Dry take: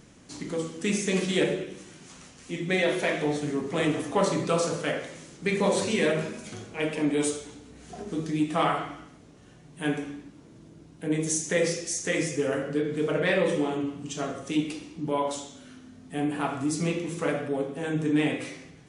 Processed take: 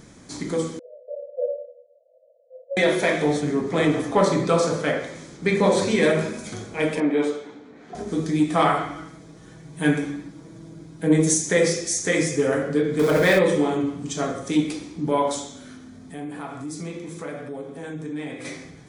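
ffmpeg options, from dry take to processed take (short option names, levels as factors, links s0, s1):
-filter_complex "[0:a]asettb=1/sr,asplit=3[s0][s1][s2];[s0]atrim=end=0.794[s3];[s1]atrim=start=0.79:end=2.77,asetpts=PTS-STARTPTS,afade=t=in:d=0.004:c=qsin,afade=t=out:st=1.976:d=0.004:c=qsin,asuperpass=centerf=570:order=12:qfactor=3.2[s4];[s2]atrim=start=2.766[s5];[s3][s4]acrossfade=d=0.004:c1=hsin:c2=qsin[s6];[s6][s5]acrossfade=d=0.004:c1=qsin:c2=hsin,asettb=1/sr,asplit=3[s7][s8][s9];[s7]atrim=end=3.414[s10];[s8]atrim=start=3.41:end=6.03,asetpts=PTS-STARTPTS,afade=t=in:d=0.004:c=qsin,afade=t=out:st=2.616:d=0.004:c=qsin,highshelf=f=8600:g=-11.5[s11];[s9]atrim=start=6.026[s12];[s10][s11]acrossfade=d=0.004:c1=hsin:c2=qsin[s13];[s13][s12]acrossfade=d=0.004:c1=qsin:c2=hsin,asettb=1/sr,asplit=3[s14][s15][s16];[s14]atrim=end=7.004[s17];[s15]atrim=start=7:end=7.95,asetpts=PTS-STARTPTS,afade=t=in:d=0.004:c=qsin,afade=t=out:st=0.946:d=0.004:c=qsin,highpass=250,lowpass=2500[s18];[s16]atrim=start=7.946[s19];[s17][s18]acrossfade=d=0.004:c1=hsin:c2=qsin[s20];[s20][s19]acrossfade=d=0.004:c1=qsin:c2=hsin,asettb=1/sr,asplit=3[s21][s22][s23];[s21]atrim=end=8.954[s24];[s22]atrim=start=8.95:end=11.34,asetpts=PTS-STARTPTS,afade=t=in:d=0.004:c=qsin,afade=t=out:st=2.386:d=0.004:c=qsin,aecho=1:1:6.2:0.65,atrim=end_sample=105399[s25];[s23]atrim=start=11.336[s26];[s24][s25]acrossfade=d=0.004:c1=hsin:c2=qsin[s27];[s27][s26]acrossfade=d=0.004:c1=qsin:c2=hsin,asettb=1/sr,asplit=3[s28][s29][s30];[s28]atrim=end=12.994[s31];[s29]atrim=start=12.99:end=13.39,asetpts=PTS-STARTPTS,afade=t=in:d=0.004:c=qsin,afade=t=out:st=0.396:d=0.004:c=qsin,aeval=exprs='val(0)+0.5*0.0316*sgn(val(0))':c=same[s32];[s30]atrim=start=13.386[s33];[s31][s32]acrossfade=d=0.004:c1=hsin:c2=qsin[s34];[s34][s33]acrossfade=d=0.004:c1=qsin:c2=hsin,asplit=3[s35][s36][s37];[s35]afade=t=out:st=15.76:d=0.02[s38];[s36]acompressor=threshold=0.00562:ratio=2:attack=3.2:release=140:knee=1:detection=peak,afade=t=in:st=15.76:d=0.02,afade=t=out:st=18.44:d=0.02[s39];[s37]afade=t=in:st=18.44:d=0.02[s40];[s38][s39][s40]amix=inputs=3:normalize=0,acontrast=48,bandreject=f=2800:w=5.1"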